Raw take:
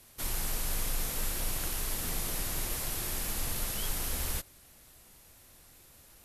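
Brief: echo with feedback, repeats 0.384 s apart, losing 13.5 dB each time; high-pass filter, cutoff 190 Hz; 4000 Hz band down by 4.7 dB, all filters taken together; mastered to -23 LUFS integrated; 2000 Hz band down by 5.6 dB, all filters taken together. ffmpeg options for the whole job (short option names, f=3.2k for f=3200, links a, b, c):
-af "highpass=190,equalizer=f=2k:t=o:g=-6,equalizer=f=4k:t=o:g=-4.5,aecho=1:1:384|768:0.211|0.0444,volume=12dB"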